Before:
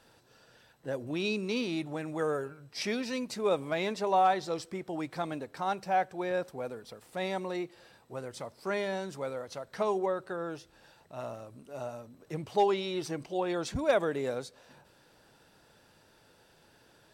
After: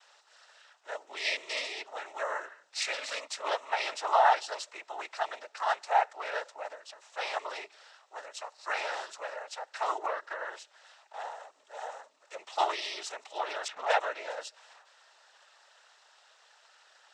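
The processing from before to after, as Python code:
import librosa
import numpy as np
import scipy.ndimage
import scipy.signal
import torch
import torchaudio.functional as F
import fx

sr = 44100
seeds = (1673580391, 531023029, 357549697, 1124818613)

y = fx.noise_vocoder(x, sr, seeds[0], bands=12)
y = fx.env_lowpass(y, sr, base_hz=2200.0, full_db=-21.5, at=(13.68, 14.3))
y = scipy.signal.sosfilt(scipy.signal.butter(4, 710.0, 'highpass', fs=sr, output='sos'), y)
y = y * librosa.db_to_amplitude(4.5)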